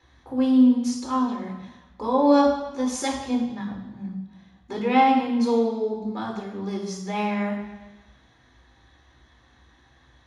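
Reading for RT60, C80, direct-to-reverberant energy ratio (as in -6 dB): 1.1 s, 7.5 dB, -6.5 dB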